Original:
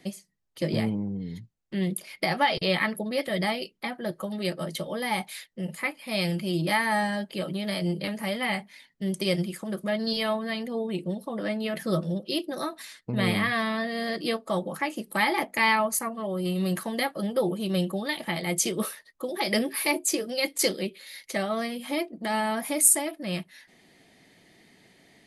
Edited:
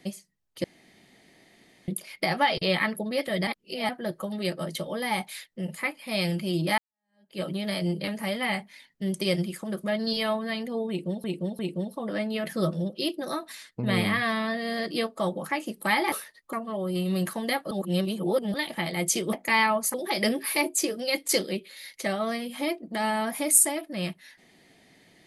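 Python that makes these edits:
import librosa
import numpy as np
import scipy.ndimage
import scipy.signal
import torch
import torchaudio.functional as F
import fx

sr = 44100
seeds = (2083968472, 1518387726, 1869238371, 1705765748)

y = fx.edit(x, sr, fx.room_tone_fill(start_s=0.64, length_s=1.24),
    fx.reverse_span(start_s=3.47, length_s=0.42),
    fx.fade_in_span(start_s=6.78, length_s=0.62, curve='exp'),
    fx.repeat(start_s=10.89, length_s=0.35, count=3),
    fx.swap(start_s=15.42, length_s=0.61, other_s=18.83, other_length_s=0.41),
    fx.reverse_span(start_s=17.21, length_s=0.83), tone=tone)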